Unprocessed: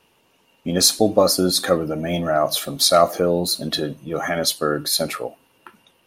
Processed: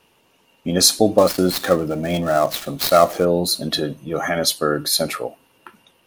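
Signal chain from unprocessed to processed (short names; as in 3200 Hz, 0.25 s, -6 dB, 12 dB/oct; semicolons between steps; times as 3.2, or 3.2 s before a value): 1.18–3.25 switching dead time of 0.062 ms; gain +1.5 dB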